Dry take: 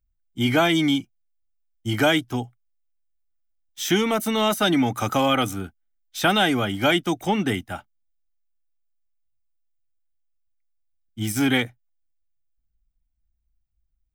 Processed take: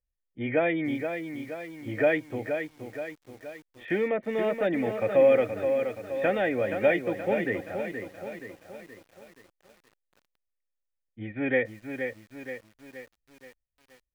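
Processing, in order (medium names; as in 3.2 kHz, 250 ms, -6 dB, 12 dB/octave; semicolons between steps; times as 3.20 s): cascade formant filter e; bit-crushed delay 474 ms, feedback 55%, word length 10-bit, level -7 dB; trim +8 dB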